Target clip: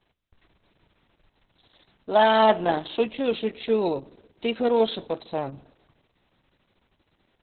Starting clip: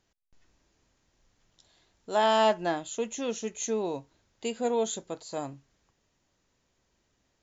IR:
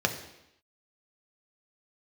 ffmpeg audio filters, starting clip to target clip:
-filter_complex "[0:a]acontrast=76,asplit=2[a][b];[b]asubboost=boost=2:cutoff=89[c];[1:a]atrim=start_sample=2205,asetrate=29988,aresample=44100[d];[c][d]afir=irnorm=-1:irlink=0,volume=-28.5dB[e];[a][e]amix=inputs=2:normalize=0" -ar 48000 -c:a libopus -b:a 6k

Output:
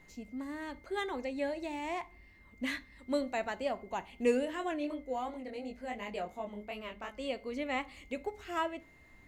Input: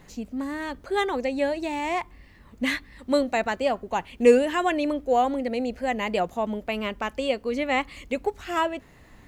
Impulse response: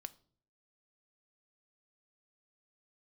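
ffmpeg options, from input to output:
-filter_complex "[1:a]atrim=start_sample=2205,asetrate=52920,aresample=44100[a];[0:a][a]afir=irnorm=-1:irlink=0,aeval=exprs='val(0)+0.00141*sin(2*PI*2100*n/s)':c=same,asplit=3[b][c][d];[b]afade=t=out:st=4.45:d=0.02[e];[c]flanger=delay=19:depth=5.2:speed=2.8,afade=t=in:st=4.45:d=0.02,afade=t=out:st=7.19:d=0.02[f];[d]afade=t=in:st=7.19:d=0.02[g];[e][f][g]amix=inputs=3:normalize=0,volume=-4dB"

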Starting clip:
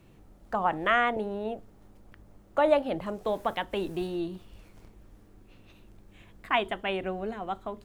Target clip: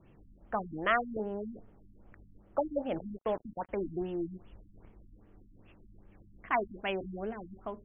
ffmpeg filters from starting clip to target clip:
-filter_complex "[0:a]asettb=1/sr,asplit=3[a][b][c];[a]atrim=end=2.964[d];[b]atrim=start=2.96:end=3.69,asetpts=PTS-STARTPTS,afade=t=in:d=0.004:c=qsin,afade=t=out:st=0.726:d=0.004:c=qsin,acrusher=bits=5:mix=0:aa=0.5[e];[c]atrim=start=3.686[f];[d][e]acrossfade=d=0.004:c1=hsin:c2=qsin[g];[g][f]acrossfade=d=0.004:c1=qsin:c2=hsin,afftfilt=real='re*lt(b*sr/1024,280*pow(3500/280,0.5+0.5*sin(2*PI*2.5*pts/sr)))':imag='im*lt(b*sr/1024,280*pow(3500/280,0.5+0.5*sin(2*PI*2.5*pts/sr)))':win_size=1024:overlap=0.75,volume=-3dB"

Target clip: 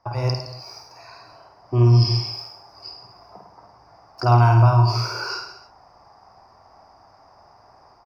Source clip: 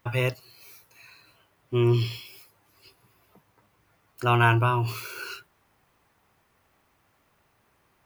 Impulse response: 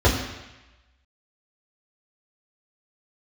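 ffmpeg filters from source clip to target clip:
-filter_complex "[0:a]acrossover=split=210|3000[a][b][c];[b]acompressor=threshold=-36dB:ratio=6[d];[a][d][c]amix=inputs=3:normalize=0,bandreject=f=4.2k:w=6.3,dynaudnorm=f=150:g=3:m=9dB,firequalizer=gain_entry='entry(100,0);entry(160,-4);entry(490,0);entry(710,13);entry(1500,-3);entry(3300,-20);entry(4900,14);entry(7000,-17);entry(15000,-27)':delay=0.05:min_phase=1,aecho=1:1:50|105|165.5|232|305.3:0.631|0.398|0.251|0.158|0.1"

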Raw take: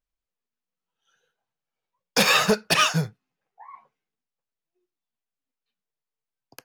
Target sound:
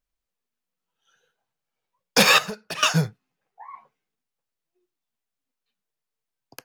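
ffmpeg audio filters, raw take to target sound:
-filter_complex "[0:a]asettb=1/sr,asplit=3[a][b][c];[a]atrim=end=2.384[d];[b]atrim=start=2.38:end=2.83,asetpts=PTS-STARTPTS,afade=t=in:d=0.004:c=qsin,afade=t=out:st=0.446:d=0.004:c=qsin,acompressor=threshold=-35dB:ratio=5[e];[c]atrim=start=2.826[f];[d][e]acrossfade=d=0.004:c1=hsin:c2=qsin[g];[g][f]acrossfade=d=0.004:c1=qsin:c2=hsin,volume=3dB"

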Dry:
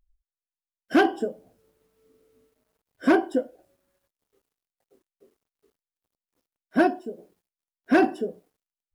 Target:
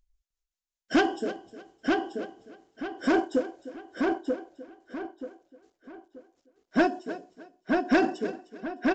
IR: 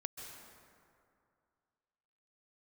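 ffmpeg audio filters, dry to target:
-filter_complex "[0:a]tremolo=f=5.3:d=0.45,acrusher=bits=9:mode=log:mix=0:aa=0.000001,aemphasis=mode=production:type=50fm,asplit=2[a][b];[b]aecho=0:1:306|612:0.141|0.0353[c];[a][c]amix=inputs=2:normalize=0,aeval=exprs='0.355*(cos(1*acos(clip(val(0)/0.355,-1,1)))-cos(1*PI/2))+0.0355*(cos(5*acos(clip(val(0)/0.355,-1,1)))-cos(5*PI/2))':c=same,asplit=2[d][e];[e]adelay=933,lowpass=f=4.1k:p=1,volume=-3dB,asplit=2[f][g];[g]adelay=933,lowpass=f=4.1k:p=1,volume=0.32,asplit=2[h][i];[i]adelay=933,lowpass=f=4.1k:p=1,volume=0.32,asplit=2[j][k];[k]adelay=933,lowpass=f=4.1k:p=1,volume=0.32[l];[f][h][j][l]amix=inputs=4:normalize=0[m];[d][m]amix=inputs=2:normalize=0,aresample=16000,aresample=44100,volume=-2.5dB"

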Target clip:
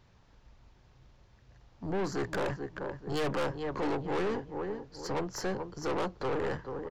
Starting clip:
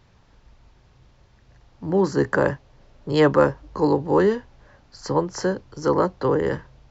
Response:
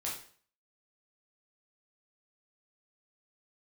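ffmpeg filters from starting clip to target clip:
-filter_complex "[0:a]asplit=2[a][b];[b]adelay=434,lowpass=f=2.7k:p=1,volume=-11.5dB,asplit=2[c][d];[d]adelay=434,lowpass=f=2.7k:p=1,volume=0.36,asplit=2[e][f];[f]adelay=434,lowpass=f=2.7k:p=1,volume=0.36,asplit=2[g][h];[h]adelay=434,lowpass=f=2.7k:p=1,volume=0.36[i];[a][c][e][g][i]amix=inputs=5:normalize=0,aeval=exprs='(tanh(17.8*val(0)+0.45)-tanh(0.45))/17.8':c=same,volume=-4dB"

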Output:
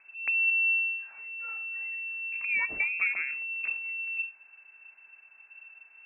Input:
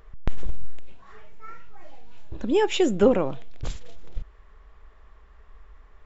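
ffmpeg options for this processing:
-af "acompressor=threshold=-19dB:ratio=6,lowpass=f=2.3k:t=q:w=0.5098,lowpass=f=2.3k:t=q:w=0.6013,lowpass=f=2.3k:t=q:w=0.9,lowpass=f=2.3k:t=q:w=2.563,afreqshift=-2700,volume=-6dB"

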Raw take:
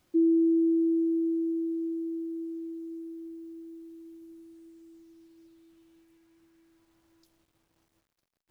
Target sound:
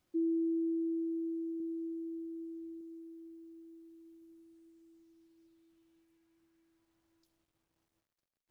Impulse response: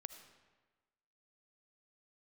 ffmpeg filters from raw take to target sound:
-filter_complex "[0:a]asettb=1/sr,asplit=3[a][b][c];[a]atrim=end=1.604[d];[b]atrim=start=1.6:end=2.81,asetpts=PTS-STARTPTS,afade=t=in:d=0.004:c=qsin,afade=t=out:st=1.206:d=0.004:c=qsin,lowshelf=f=150:g=9.5[e];[c]atrim=start=2.806[f];[d][e]acrossfade=d=0.004:c1=hsin:c2=qsin[g];[g][f]acrossfade=d=0.004:c1=qsin:c2=hsin[h];[1:a]atrim=start_sample=2205,atrim=end_sample=3528[i];[h][i]afir=irnorm=-1:irlink=0,volume=-4dB"

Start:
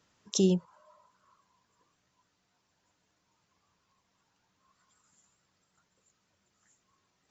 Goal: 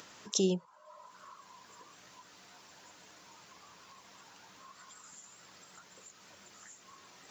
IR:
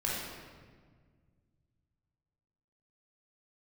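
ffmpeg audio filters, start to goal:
-af "highpass=f=350:p=1,acompressor=mode=upward:threshold=-39dB:ratio=2.5"

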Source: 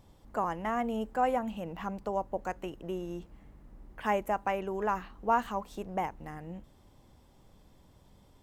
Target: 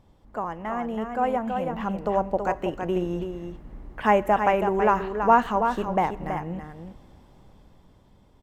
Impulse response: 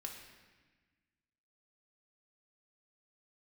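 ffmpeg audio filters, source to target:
-filter_complex "[0:a]highshelf=f=4.8k:g=-10.5,aecho=1:1:327:0.447,asplit=2[a][b];[1:a]atrim=start_sample=2205,asetrate=33957,aresample=44100[c];[b][c]afir=irnorm=-1:irlink=0,volume=-13.5dB[d];[a][d]amix=inputs=2:normalize=0,dynaudnorm=f=270:g=13:m=9dB"

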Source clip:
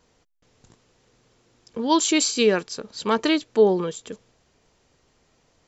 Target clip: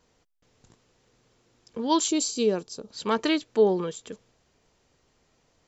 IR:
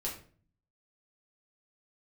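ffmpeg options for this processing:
-filter_complex "[0:a]asettb=1/sr,asplit=3[a][b][c];[a]atrim=end=2.084[d];[b]atrim=start=2.08:end=2.91,asetpts=PTS-STARTPTS,afade=t=in:d=0.004:c=qsin,afade=t=out:st=0.826:d=0.004:c=qsin,equalizer=f=1.9k:w=0.94:g=-14.5[e];[c]atrim=start=2.906[f];[d][e]acrossfade=d=0.004:c1=hsin:c2=qsin[g];[g][f]acrossfade=d=0.004:c1=qsin:c2=hsin,volume=-3.5dB"

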